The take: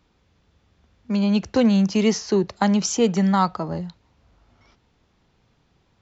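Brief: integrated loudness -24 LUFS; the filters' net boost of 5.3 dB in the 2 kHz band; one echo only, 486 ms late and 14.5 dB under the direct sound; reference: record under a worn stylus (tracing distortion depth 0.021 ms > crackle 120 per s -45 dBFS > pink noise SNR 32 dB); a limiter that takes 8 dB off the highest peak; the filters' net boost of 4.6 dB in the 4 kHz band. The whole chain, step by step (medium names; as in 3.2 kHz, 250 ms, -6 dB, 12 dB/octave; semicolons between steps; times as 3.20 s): peaking EQ 2 kHz +5.5 dB; peaking EQ 4 kHz +4.5 dB; peak limiter -12.5 dBFS; delay 486 ms -14.5 dB; tracing distortion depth 0.021 ms; crackle 120 per s -45 dBFS; pink noise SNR 32 dB; trim -2 dB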